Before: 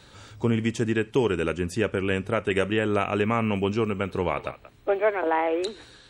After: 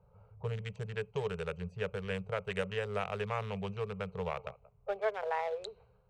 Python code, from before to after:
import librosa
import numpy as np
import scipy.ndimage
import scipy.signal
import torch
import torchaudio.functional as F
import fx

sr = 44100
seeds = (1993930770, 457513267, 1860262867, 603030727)

y = fx.wiener(x, sr, points=25)
y = scipy.signal.sosfilt(scipy.signal.ellip(3, 1.0, 40, [190.0, 430.0], 'bandstop', fs=sr, output='sos'), y)
y = fx.env_lowpass(y, sr, base_hz=1300.0, full_db=-24.5)
y = y * 10.0 ** (-8.5 / 20.0)